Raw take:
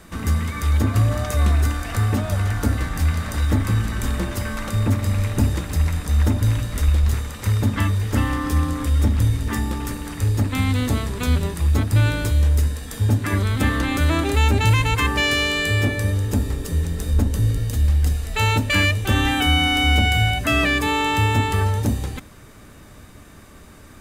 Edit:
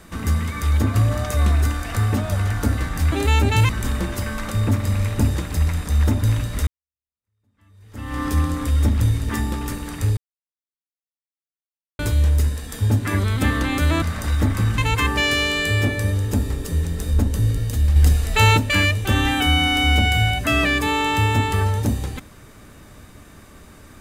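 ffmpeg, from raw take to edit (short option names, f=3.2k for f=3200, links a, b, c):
-filter_complex "[0:a]asplit=10[a][b][c][d][e][f][g][h][i][j];[a]atrim=end=3.122[k];[b]atrim=start=14.208:end=14.782[l];[c]atrim=start=3.878:end=6.86,asetpts=PTS-STARTPTS,afade=t=out:st=2.978:d=0.004:c=hsin[m];[d]atrim=start=6.86:end=10.36,asetpts=PTS-STARTPTS,afade=t=in:d=1.54:c=exp,afade=t=out:st=3.496:d=0.004:c=hsin[n];[e]atrim=start=10.36:end=12.18,asetpts=PTS-STARTPTS,volume=0[o];[f]atrim=start=12.18:end=14.212,asetpts=PTS-STARTPTS,afade=t=in:d=0.004:c=hsin[p];[g]atrim=start=3.118:end=3.882[q];[h]atrim=start=14.778:end=17.962[r];[i]atrim=start=17.958:end=18.572,asetpts=PTS-STARTPTS,volume=5dB[s];[j]atrim=start=18.568[t];[k][l]acrossfade=d=0.004:c1=hsin:c2=hsin[u];[m][n][o][p]concat=n=4:v=0:a=1[v];[u][v]acrossfade=d=0.004:c1=hsin:c2=hsin[w];[w][q]acrossfade=d=0.004:c1=hsin:c2=hsin[x];[x][r]acrossfade=d=0.004:c1=hsin:c2=hsin[y];[y][s]acrossfade=d=0.004:c1=hsin:c2=hsin[z];[z][t]acrossfade=d=0.004:c1=hsin:c2=hsin"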